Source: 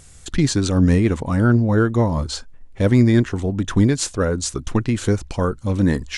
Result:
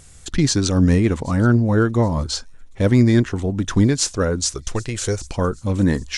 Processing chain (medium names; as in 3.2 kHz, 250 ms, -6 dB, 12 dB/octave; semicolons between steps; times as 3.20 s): 4.54–5.21 s: graphic EQ 125/250/500/1000/8000 Hz -3/-12/+4/-4/+5 dB; feedback echo behind a high-pass 776 ms, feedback 42%, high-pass 4.8 kHz, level -17.5 dB; dynamic bell 5.5 kHz, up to +6 dB, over -41 dBFS, Q 1.9